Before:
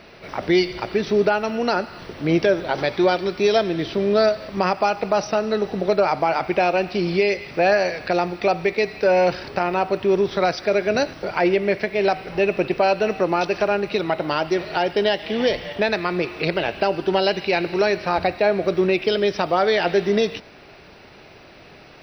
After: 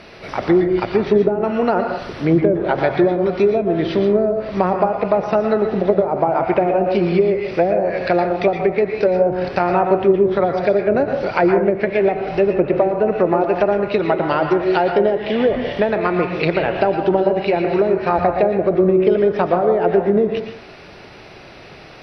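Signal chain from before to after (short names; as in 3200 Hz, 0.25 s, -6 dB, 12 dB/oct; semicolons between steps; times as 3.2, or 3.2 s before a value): treble ducked by the level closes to 440 Hz, closed at -13.5 dBFS; plate-style reverb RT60 0.52 s, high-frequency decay 0.45×, pre-delay 0.105 s, DRR 5 dB; gain +4.5 dB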